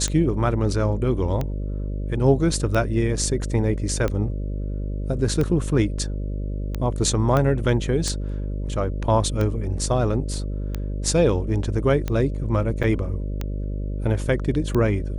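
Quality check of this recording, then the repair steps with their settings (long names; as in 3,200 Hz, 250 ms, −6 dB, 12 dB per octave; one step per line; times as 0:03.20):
mains buzz 50 Hz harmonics 12 −27 dBFS
scratch tick 45 rpm −13 dBFS
0:07.37: click −10 dBFS
0:12.83–0:12.84: drop-out 6.2 ms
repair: click removal
hum removal 50 Hz, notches 12
repair the gap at 0:12.83, 6.2 ms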